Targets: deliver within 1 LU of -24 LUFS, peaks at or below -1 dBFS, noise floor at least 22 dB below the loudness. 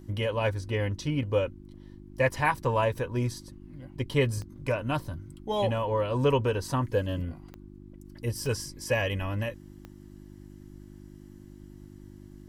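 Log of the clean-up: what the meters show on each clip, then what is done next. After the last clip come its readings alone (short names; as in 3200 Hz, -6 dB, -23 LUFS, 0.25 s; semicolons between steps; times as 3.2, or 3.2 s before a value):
clicks 4; hum 50 Hz; harmonics up to 350 Hz; hum level -46 dBFS; loudness -29.5 LUFS; peak -11.0 dBFS; loudness target -24.0 LUFS
-> de-click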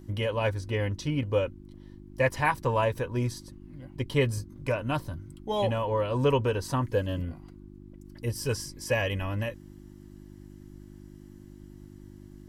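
clicks 0; hum 50 Hz; harmonics up to 350 Hz; hum level -46 dBFS
-> de-hum 50 Hz, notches 7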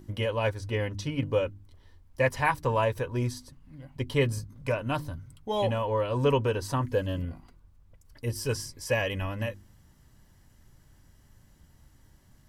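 hum none; loudness -29.5 LUFS; peak -10.5 dBFS; loudness target -24.0 LUFS
-> gain +5.5 dB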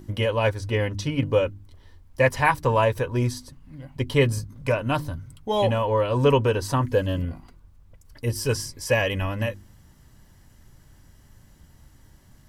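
loudness -24.0 LUFS; peak -5.0 dBFS; noise floor -54 dBFS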